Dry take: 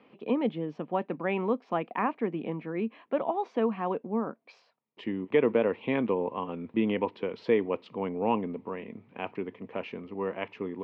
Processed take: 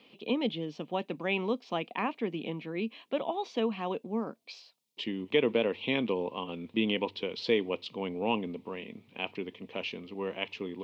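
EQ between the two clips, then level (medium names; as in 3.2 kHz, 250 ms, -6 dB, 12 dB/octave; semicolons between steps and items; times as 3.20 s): resonant high shelf 2.4 kHz +14 dB, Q 1.5; hum notches 50/100 Hz; -2.5 dB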